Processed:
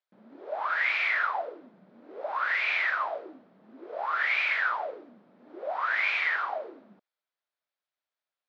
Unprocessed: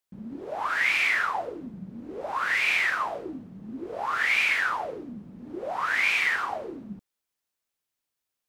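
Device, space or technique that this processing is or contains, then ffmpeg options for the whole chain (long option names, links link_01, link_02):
phone earpiece: -af "highpass=500,equalizer=frequency=620:width_type=q:width=4:gain=6,equalizer=frequency=1400:width_type=q:width=4:gain=3,equalizer=frequency=2800:width_type=q:width=4:gain=-4,lowpass=frequency=4200:width=0.5412,lowpass=frequency=4200:width=1.3066,volume=-2.5dB"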